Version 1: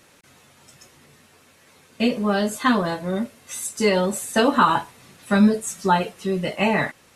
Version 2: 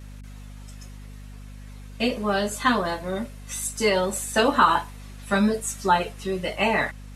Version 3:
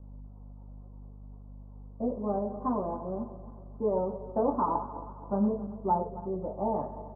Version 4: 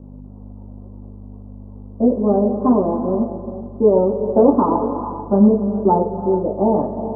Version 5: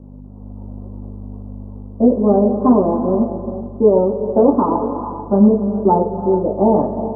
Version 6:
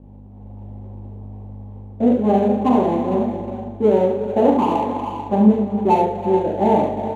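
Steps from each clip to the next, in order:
high-pass 370 Hz 6 dB/octave; vibrato 1.1 Hz 28 cents; hum 50 Hz, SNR 15 dB
backward echo that repeats 135 ms, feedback 66%, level -13 dB; steep low-pass 1 kHz 48 dB/octave; delay 101 ms -16.5 dB; trim -6 dB
peaking EQ 310 Hz +14.5 dB 2.4 oct; gated-style reverb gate 470 ms rising, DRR 9 dB; trim +3.5 dB
level rider gain up to 5.5 dB
median filter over 25 samples; peaking EQ 810 Hz +8.5 dB 0.3 oct; on a send: multi-tap echo 42/71/453 ms -6/-5/-15 dB; on the sum: trim -5 dB

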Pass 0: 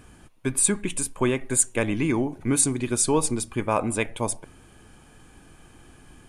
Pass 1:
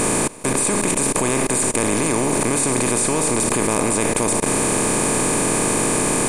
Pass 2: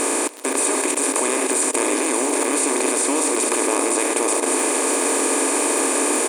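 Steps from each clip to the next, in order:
spectral levelling over time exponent 0.2; level held to a coarse grid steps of 20 dB; trim +1 dB
delay 586 ms -5.5 dB; crackle 57 per s -20 dBFS; brick-wall FIR high-pass 250 Hz; trim -1 dB

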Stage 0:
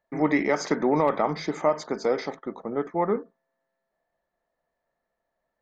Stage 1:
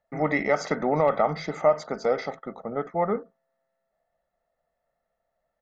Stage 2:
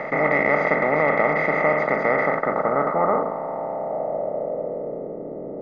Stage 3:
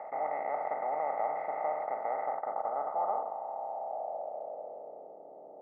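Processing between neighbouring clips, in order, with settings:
treble shelf 3.9 kHz -6.5 dB; comb 1.5 ms, depth 55%
spectral levelling over time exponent 0.2; low-pass sweep 2.2 kHz -> 380 Hz, 1.89–5.21 s; trim -6 dB
band-pass filter 780 Hz, Q 6.4; trim -3.5 dB

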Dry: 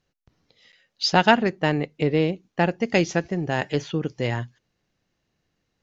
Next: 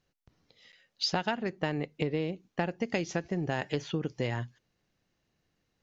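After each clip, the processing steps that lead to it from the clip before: compression 8:1, threshold -24 dBFS, peak gain reduction 14 dB; trim -2.5 dB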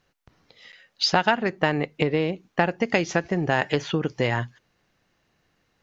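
peaking EQ 1.3 kHz +6.5 dB 2.5 oct; trim +6 dB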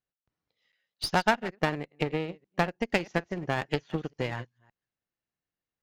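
chunks repeated in reverse 188 ms, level -12.5 dB; one-sided clip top -26 dBFS, bottom -7.5 dBFS; upward expansion 2.5:1, over -35 dBFS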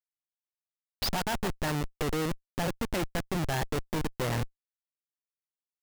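Schmitt trigger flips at -37.5 dBFS; trim +4 dB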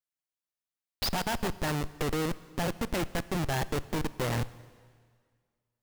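plate-style reverb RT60 1.9 s, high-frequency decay 0.95×, DRR 16.5 dB

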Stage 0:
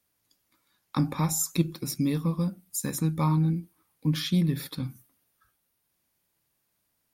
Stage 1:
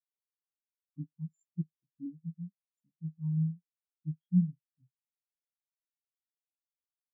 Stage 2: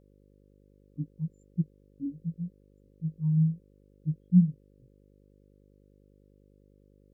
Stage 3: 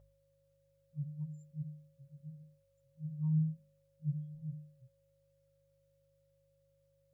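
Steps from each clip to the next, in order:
spectral contrast expander 4:1; trim -6 dB
mains buzz 50 Hz, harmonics 11, -67 dBFS -3 dB/octave; trim +6 dB
comb of notches 250 Hz; FFT band-reject 160–490 Hz; de-hum 50.2 Hz, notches 5; trim +1.5 dB

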